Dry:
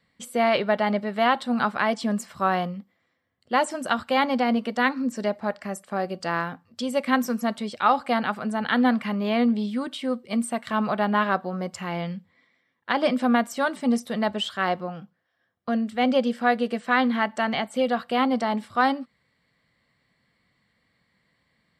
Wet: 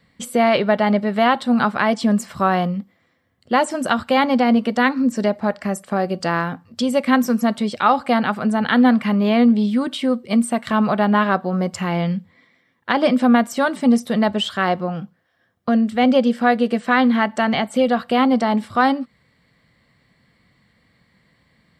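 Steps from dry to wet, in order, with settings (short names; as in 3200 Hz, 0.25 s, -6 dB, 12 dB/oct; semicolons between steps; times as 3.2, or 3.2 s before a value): in parallel at -1 dB: compressor, threshold -30 dBFS, peak gain reduction 14.5 dB; on the sum: low shelf 340 Hz +5.5 dB; gain +2 dB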